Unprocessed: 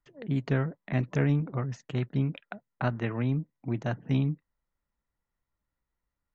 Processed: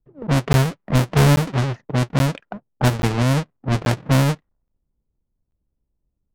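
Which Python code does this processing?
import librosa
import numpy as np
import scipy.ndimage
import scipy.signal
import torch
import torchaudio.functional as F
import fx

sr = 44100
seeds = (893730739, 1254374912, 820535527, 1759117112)

y = fx.halfwave_hold(x, sr)
y = fx.env_lowpass(y, sr, base_hz=420.0, full_db=-19.5)
y = fx.buffer_crackle(y, sr, first_s=0.53, period_s=0.83, block=512, kind='zero')
y = F.gain(torch.from_numpy(y), 6.5).numpy()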